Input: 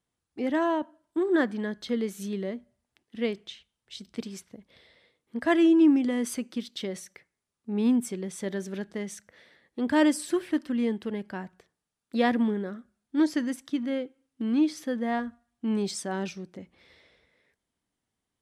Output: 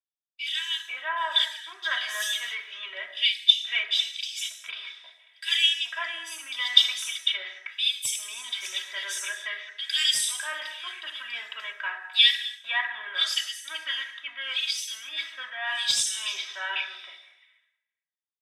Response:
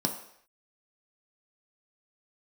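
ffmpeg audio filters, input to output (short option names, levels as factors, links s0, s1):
-filter_complex "[0:a]asplit=2[s0][s1];[s1]aeval=exprs='sgn(val(0))*max(abs(val(0))-0.00631,0)':c=same,volume=0.631[s2];[s0][s2]amix=inputs=2:normalize=0,acrossover=split=2700[s3][s4];[s3]adelay=500[s5];[s5][s4]amix=inputs=2:normalize=0,agate=range=0.0224:threshold=0.00282:ratio=3:detection=peak,aecho=1:1:3.1:0.84,areverse,acompressor=threshold=0.0562:ratio=5,areverse,highpass=f=1400:w=0.5412,highpass=f=1400:w=1.3066,aeval=exprs='0.0668*(abs(mod(val(0)/0.0668+3,4)-2)-1)':c=same,equalizer=f=2000:w=0.54:g=7.5[s6];[1:a]atrim=start_sample=2205,afade=t=out:st=0.24:d=0.01,atrim=end_sample=11025,asetrate=28224,aresample=44100[s7];[s6][s7]afir=irnorm=-1:irlink=0"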